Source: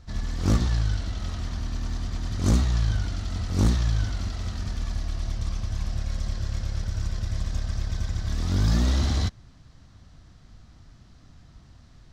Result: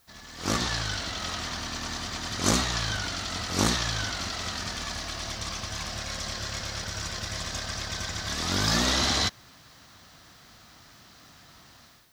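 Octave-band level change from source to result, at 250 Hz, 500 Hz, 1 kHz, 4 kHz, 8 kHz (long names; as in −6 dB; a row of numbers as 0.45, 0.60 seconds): −2.5, +3.5, +8.0, +10.5, +10.0 decibels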